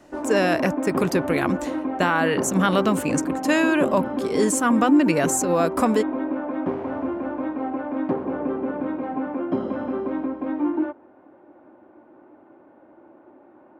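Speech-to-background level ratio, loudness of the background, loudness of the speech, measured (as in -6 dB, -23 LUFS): 5.0 dB, -27.0 LUFS, -22.0 LUFS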